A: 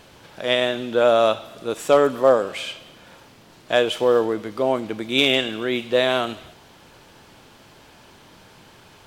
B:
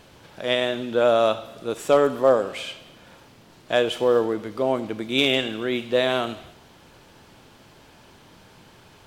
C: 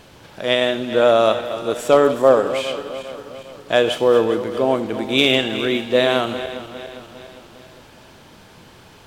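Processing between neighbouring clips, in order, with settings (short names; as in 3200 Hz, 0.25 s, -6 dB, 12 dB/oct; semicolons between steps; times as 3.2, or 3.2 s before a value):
low shelf 390 Hz +3 dB; on a send at -19 dB: reverb RT60 0.75 s, pre-delay 66 ms; on the sum: gain -3 dB
regenerating reverse delay 0.202 s, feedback 69%, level -12 dB; gain +4.5 dB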